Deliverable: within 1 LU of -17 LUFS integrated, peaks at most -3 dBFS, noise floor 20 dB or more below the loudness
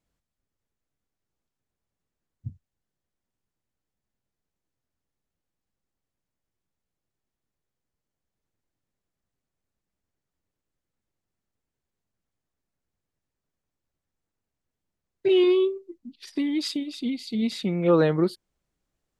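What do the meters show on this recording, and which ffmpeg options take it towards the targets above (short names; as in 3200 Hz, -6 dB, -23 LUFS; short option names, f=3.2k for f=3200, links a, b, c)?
loudness -24.5 LUFS; peak -9.0 dBFS; loudness target -17.0 LUFS
-> -af "volume=7.5dB,alimiter=limit=-3dB:level=0:latency=1"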